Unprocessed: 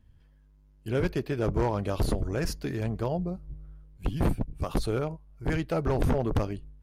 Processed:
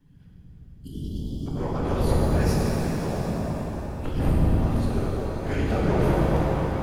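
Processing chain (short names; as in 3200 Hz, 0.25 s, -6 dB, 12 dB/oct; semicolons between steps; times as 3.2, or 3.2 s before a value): short-time reversal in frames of 45 ms; chopper 0.57 Hz, depth 60%, duty 50%; in parallel at +0.5 dB: compressor, threshold -37 dBFS, peak gain reduction 12.5 dB; on the sum: spectral delete 0.32–1.47, 280–2900 Hz; whisperiser; on a send: repeats that get brighter 0.107 s, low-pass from 400 Hz, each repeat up 1 oct, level 0 dB; on the sum: shimmer reverb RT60 2.9 s, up +7 st, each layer -8 dB, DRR -3 dB; gain -1.5 dB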